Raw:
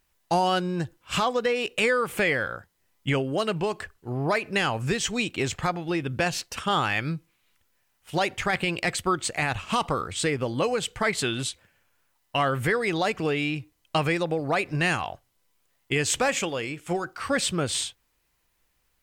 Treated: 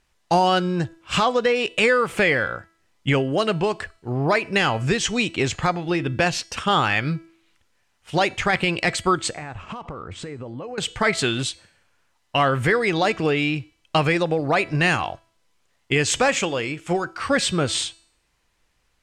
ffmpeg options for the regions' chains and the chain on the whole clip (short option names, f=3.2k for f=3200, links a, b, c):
-filter_complex "[0:a]asettb=1/sr,asplit=3[a][b][c];[a]atrim=end=9.314[d];[b]atrim=start=9.31:end=10.78,asetpts=PTS-STARTPTS,afade=t=in:d=0.004:c=qsin,afade=t=out:st=1.466:d=0.004:c=qsin,lowpass=5.2k,equalizer=f=4k:t=o:w=1.8:g=-12,acompressor=threshold=-34dB:ratio=16:attack=3.2:release=140:knee=1:detection=peak[e];[c]atrim=start=10.776[f];[d][e]acrossfade=d=0.004:c1=hsin:c2=qsin[g];[g][f]acrossfade=d=0.004:c1=qsin:c2=hsin,lowpass=7.7k,bandreject=f=329.6:t=h:w=4,bandreject=f=659.2:t=h:w=4,bandreject=f=988.8:t=h:w=4,bandreject=f=1.3184k:t=h:w=4,bandreject=f=1.648k:t=h:w=4,bandreject=f=1.9776k:t=h:w=4,bandreject=f=2.3072k:t=h:w=4,bandreject=f=2.6368k:t=h:w=4,bandreject=f=2.9664k:t=h:w=4,bandreject=f=3.296k:t=h:w=4,bandreject=f=3.6256k:t=h:w=4,bandreject=f=3.9552k:t=h:w=4,bandreject=f=4.2848k:t=h:w=4,bandreject=f=4.6144k:t=h:w=4,bandreject=f=4.944k:t=h:w=4,bandreject=f=5.2736k:t=h:w=4,bandreject=f=5.6032k:t=h:w=4,bandreject=f=5.9328k:t=h:w=4,bandreject=f=6.2624k:t=h:w=4,bandreject=f=6.592k:t=h:w=4,bandreject=f=6.9216k:t=h:w=4,bandreject=f=7.2512k:t=h:w=4,bandreject=f=7.5808k:t=h:w=4,bandreject=f=7.9104k:t=h:w=4,bandreject=f=8.24k:t=h:w=4,bandreject=f=8.5696k:t=h:w=4,bandreject=f=8.8992k:t=h:w=4,bandreject=f=9.2288k:t=h:w=4,bandreject=f=9.5584k:t=h:w=4,bandreject=f=9.888k:t=h:w=4,bandreject=f=10.2176k:t=h:w=4,bandreject=f=10.5472k:t=h:w=4,bandreject=f=10.8768k:t=h:w=4,bandreject=f=11.2064k:t=h:w=4,bandreject=f=11.536k:t=h:w=4,bandreject=f=11.8656k:t=h:w=4,bandreject=f=12.1952k:t=h:w=4,bandreject=f=12.5248k:t=h:w=4,volume=5dB"